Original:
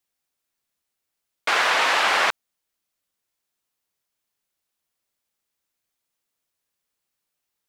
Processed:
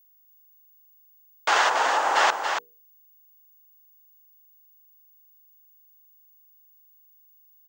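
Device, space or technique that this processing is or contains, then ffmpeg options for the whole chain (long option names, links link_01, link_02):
old television with a line whistle: -filter_complex "[0:a]highpass=frequency=200:width=0.5412,highpass=frequency=200:width=1.3066,equalizer=frequency=220:width_type=q:width=4:gain=-10,equalizer=frequency=860:width_type=q:width=4:gain=6,equalizer=frequency=2300:width_type=q:width=4:gain=-7,equalizer=frequency=4000:width_type=q:width=4:gain=-3,equalizer=frequency=6700:width_type=q:width=4:gain=5,lowpass=frequency=8000:width=0.5412,lowpass=frequency=8000:width=1.3066,bandreject=frequency=60:width_type=h:width=6,bandreject=frequency=120:width_type=h:width=6,bandreject=frequency=180:width_type=h:width=6,bandreject=frequency=240:width_type=h:width=6,bandreject=frequency=300:width_type=h:width=6,bandreject=frequency=360:width_type=h:width=6,bandreject=frequency=420:width_type=h:width=6,bandreject=frequency=480:width_type=h:width=6,aeval=exprs='val(0)+0.00141*sin(2*PI*15625*n/s)':channel_layout=same,asplit=3[link_01][link_02][link_03];[link_01]afade=type=out:start_time=1.68:duration=0.02[link_04];[link_02]equalizer=frequency=3600:width=0.48:gain=-13.5,afade=type=in:start_time=1.68:duration=0.02,afade=type=out:start_time=2.15:duration=0.02[link_05];[link_03]afade=type=in:start_time=2.15:duration=0.02[link_06];[link_04][link_05][link_06]amix=inputs=3:normalize=0,aecho=1:1:282:0.473"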